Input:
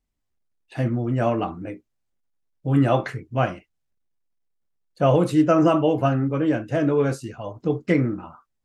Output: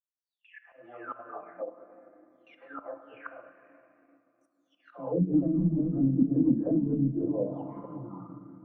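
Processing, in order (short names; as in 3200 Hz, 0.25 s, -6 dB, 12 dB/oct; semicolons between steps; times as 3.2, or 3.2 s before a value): spectral delay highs early, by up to 0.824 s; high-pass sweep 590 Hz -> 170 Hz, 3.64–5.38; gate with hold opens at -44 dBFS; flange 0.26 Hz, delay 1.2 ms, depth 4.5 ms, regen -76%; in parallel at -1.5 dB: compressor, threshold -33 dBFS, peak gain reduction 17 dB; on the sum: flange 1 Hz, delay 6.1 ms, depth 9.7 ms, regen -41%; auto swell 0.676 s; tremolo triangle 1.4 Hz, depth 50%; hard clip -26.5 dBFS, distortion -11 dB; on a send at -5 dB: reverb RT60 3.4 s, pre-delay 4 ms; on the sum: transient shaper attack +2 dB, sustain -4 dB; envelope low-pass 220–1900 Hz down, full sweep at -25 dBFS; gain -1.5 dB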